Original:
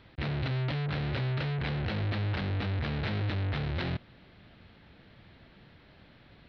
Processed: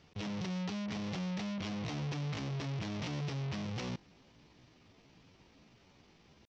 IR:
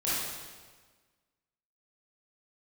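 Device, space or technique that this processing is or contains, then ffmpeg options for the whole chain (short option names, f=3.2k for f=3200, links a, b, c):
chipmunk voice: -af "asetrate=62367,aresample=44100,atempo=0.707107,volume=-6.5dB"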